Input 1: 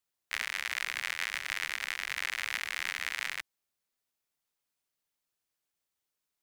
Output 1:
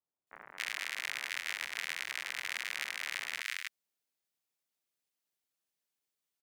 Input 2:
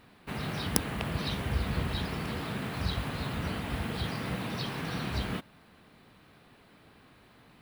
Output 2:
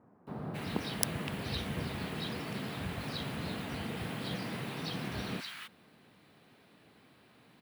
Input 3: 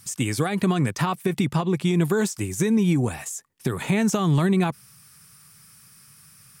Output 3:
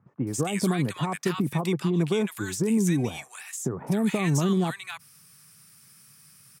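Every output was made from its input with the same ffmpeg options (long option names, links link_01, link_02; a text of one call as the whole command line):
ffmpeg -i in.wav -filter_complex "[0:a]highpass=120,acrossover=split=1200[link_01][link_02];[link_02]adelay=270[link_03];[link_01][link_03]amix=inputs=2:normalize=0,volume=-2.5dB" out.wav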